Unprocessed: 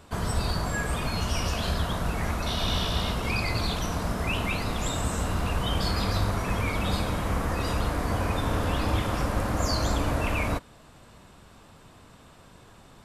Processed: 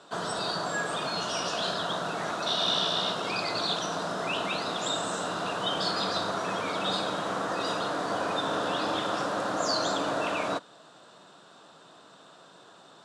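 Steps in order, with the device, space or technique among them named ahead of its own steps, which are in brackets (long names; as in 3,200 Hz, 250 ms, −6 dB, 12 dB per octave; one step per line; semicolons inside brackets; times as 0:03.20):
television speaker (loudspeaker in its box 190–8,300 Hz, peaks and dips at 230 Hz −9 dB, 660 Hz +4 dB, 1,400 Hz +5 dB, 2,200 Hz −9 dB, 3,700 Hz +7 dB)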